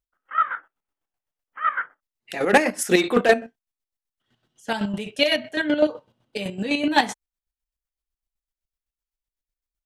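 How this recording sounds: chopped level 7.9 Hz, depth 60%, duty 35%

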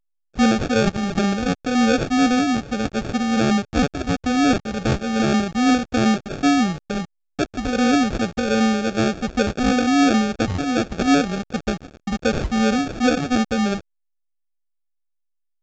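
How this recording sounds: a quantiser's noise floor 6-bit, dither none; phasing stages 6, 2.7 Hz, lowest notch 670–3900 Hz; aliases and images of a low sample rate 1000 Hz, jitter 0%; A-law

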